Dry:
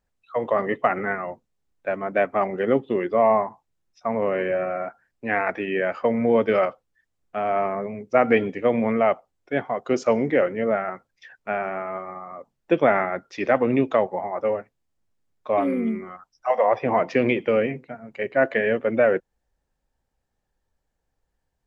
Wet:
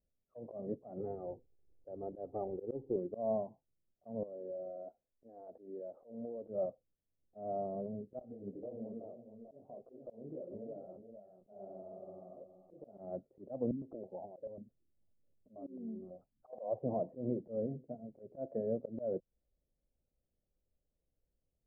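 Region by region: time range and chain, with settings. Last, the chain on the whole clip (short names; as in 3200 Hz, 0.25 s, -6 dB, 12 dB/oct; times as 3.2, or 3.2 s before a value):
1–2.96 G.711 law mismatch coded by mu + comb 2.4 ms, depth 68%
4.23–6.48 bell 130 Hz -11 dB 2.4 oct + compressor 10:1, threshold -31 dBFS
8.19–12.98 compressor 10:1, threshold -30 dBFS + echo 0.44 s -9 dB + detuned doubles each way 59 cents
13.71–16.53 compressor 3:1, threshold -41 dBFS + low shelf 220 Hz +5.5 dB + stepped low-pass 9.2 Hz 230–4900 Hz
whole clip: Chebyshev low-pass 620 Hz, order 4; dynamic EQ 390 Hz, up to -7 dB, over -34 dBFS, Q 0.81; auto swell 0.165 s; gain -6.5 dB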